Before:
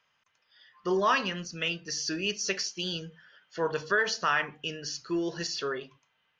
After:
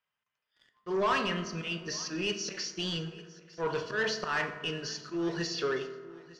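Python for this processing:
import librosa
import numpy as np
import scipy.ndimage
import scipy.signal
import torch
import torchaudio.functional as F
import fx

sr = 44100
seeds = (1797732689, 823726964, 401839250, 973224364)

y = fx.auto_swell(x, sr, attack_ms=129.0)
y = fx.leveller(y, sr, passes=3)
y = fx.air_absorb(y, sr, metres=100.0)
y = fx.echo_feedback(y, sr, ms=905, feedback_pct=29, wet_db=-20.5)
y = fx.rev_fdn(y, sr, rt60_s=1.5, lf_ratio=1.2, hf_ratio=0.5, size_ms=14.0, drr_db=7.5)
y = F.gain(torch.from_numpy(y), -8.5).numpy()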